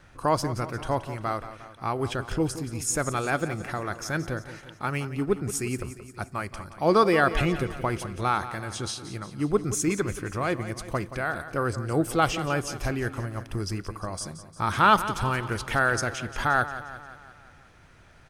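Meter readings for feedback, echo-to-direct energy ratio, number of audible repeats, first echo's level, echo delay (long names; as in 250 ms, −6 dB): 57%, −11.5 dB, 5, −13.0 dB, 176 ms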